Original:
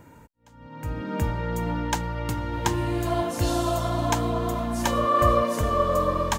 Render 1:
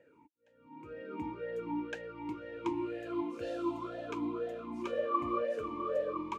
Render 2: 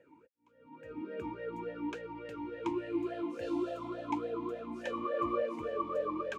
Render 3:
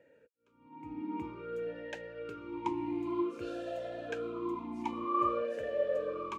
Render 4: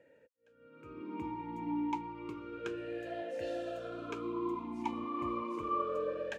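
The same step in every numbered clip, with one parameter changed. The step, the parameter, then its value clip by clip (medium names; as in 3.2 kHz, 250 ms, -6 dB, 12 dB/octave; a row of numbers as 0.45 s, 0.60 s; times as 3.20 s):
talking filter, rate: 2 Hz, 3.5 Hz, 0.52 Hz, 0.3 Hz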